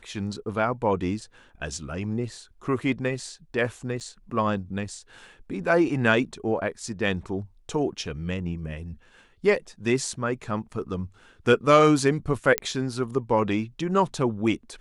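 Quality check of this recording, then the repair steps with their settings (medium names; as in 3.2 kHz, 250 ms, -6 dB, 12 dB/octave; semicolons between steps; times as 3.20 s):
4.00–4.01 s: dropout 8.4 ms
12.58 s: pop -5 dBFS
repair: de-click; interpolate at 4.00 s, 8.4 ms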